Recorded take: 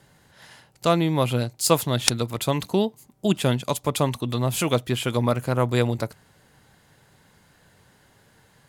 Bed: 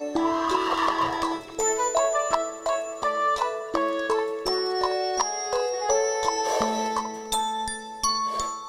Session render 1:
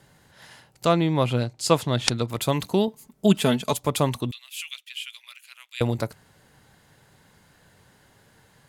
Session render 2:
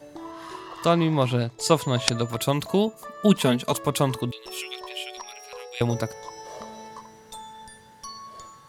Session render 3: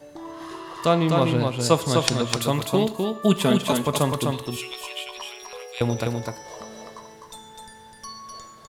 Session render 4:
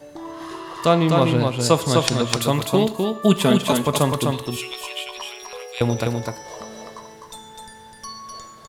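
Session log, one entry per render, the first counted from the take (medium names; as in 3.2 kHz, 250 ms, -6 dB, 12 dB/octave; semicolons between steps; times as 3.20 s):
0.86–2.30 s: distance through air 56 m; 2.87–3.73 s: comb 4.6 ms, depth 68%; 4.31–5.81 s: ladder high-pass 2.3 kHz, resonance 55%
add bed -15 dB
on a send: delay 253 ms -4 dB; on the sum: gated-style reverb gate 180 ms falling, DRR 11.5 dB
trim +3 dB; peak limiter -3 dBFS, peak gain reduction 3 dB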